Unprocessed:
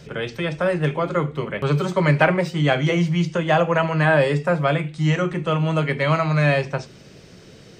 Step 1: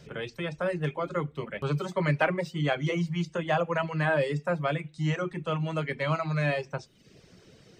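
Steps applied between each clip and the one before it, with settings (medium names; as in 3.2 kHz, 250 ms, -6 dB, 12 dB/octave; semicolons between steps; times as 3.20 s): reverb removal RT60 0.66 s; trim -8 dB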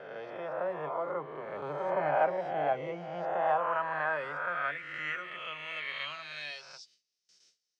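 reverse spectral sustain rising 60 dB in 1.42 s; band-pass sweep 750 Hz -> 5.8 kHz, 3.22–7.19 s; gate with hold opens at -53 dBFS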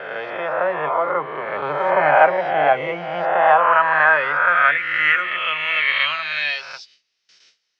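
Bessel low-pass 3.9 kHz, order 2; peaking EQ 2.2 kHz +12.5 dB 3 oct; trim +8 dB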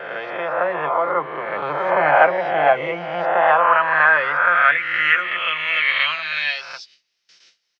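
comb 5.8 ms, depth 34%; harmonic-percussive split percussive +5 dB; trim -2.5 dB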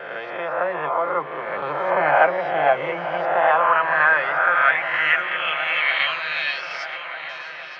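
shuffle delay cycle 1231 ms, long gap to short 3:1, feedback 55%, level -13.5 dB; trim -2.5 dB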